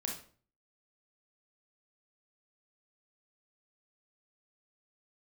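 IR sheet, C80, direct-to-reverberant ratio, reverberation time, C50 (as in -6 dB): 10.5 dB, -0.5 dB, 0.45 s, 4.5 dB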